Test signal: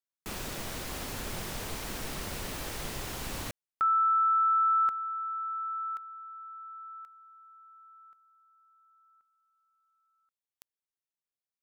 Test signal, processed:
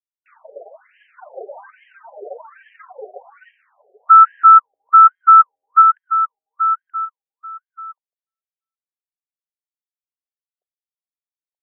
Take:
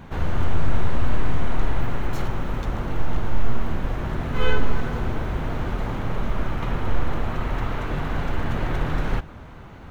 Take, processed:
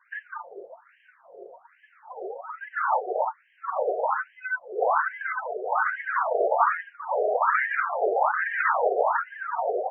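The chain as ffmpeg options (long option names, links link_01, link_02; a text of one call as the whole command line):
ffmpeg -i in.wav -filter_complex "[0:a]acrossover=split=210|1500[link_01][link_02][link_03];[link_02]asoftclip=type=tanh:threshold=-31.5dB[link_04];[link_01][link_04][link_03]amix=inputs=3:normalize=0,aecho=1:1:928:0.562,areverse,acompressor=threshold=-22dB:ratio=20:attack=42:release=63:knee=1:detection=peak,areverse,aeval=exprs='sgn(val(0))*max(abs(val(0))-0.00211,0)':channel_layout=same,bass=frequency=250:gain=-2,treble=frequency=4000:gain=-5,afftdn=noise_reduction=30:noise_floor=-33,adynamicequalizer=threshold=0.00447:dfrequency=150:dqfactor=1.4:tfrequency=150:tqfactor=1.4:attack=5:release=100:ratio=0.438:range=3.5:mode=cutabove:tftype=bell,alimiter=level_in=21dB:limit=-1dB:release=50:level=0:latency=1,afftfilt=real='re*between(b*sr/1024,530*pow(2300/530,0.5+0.5*sin(2*PI*1.2*pts/sr))/1.41,530*pow(2300/530,0.5+0.5*sin(2*PI*1.2*pts/sr))*1.41)':imag='im*between(b*sr/1024,530*pow(2300/530,0.5+0.5*sin(2*PI*1.2*pts/sr))/1.41,530*pow(2300/530,0.5+0.5*sin(2*PI*1.2*pts/sr))*1.41)':win_size=1024:overlap=0.75,volume=2dB" out.wav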